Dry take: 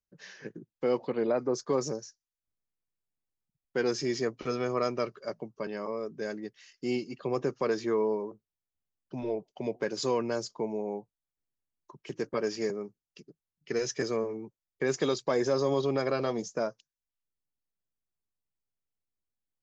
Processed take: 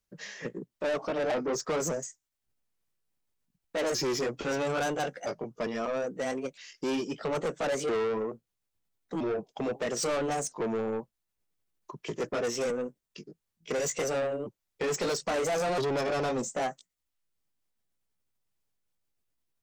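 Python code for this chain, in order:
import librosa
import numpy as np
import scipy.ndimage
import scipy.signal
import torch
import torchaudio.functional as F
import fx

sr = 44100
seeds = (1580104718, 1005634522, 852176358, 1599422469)

y = fx.pitch_ramps(x, sr, semitones=4.5, every_ms=1315)
y = 10.0 ** (-35.0 / 20.0) * np.tanh(y / 10.0 ** (-35.0 / 20.0))
y = F.gain(torch.from_numpy(y), 8.5).numpy()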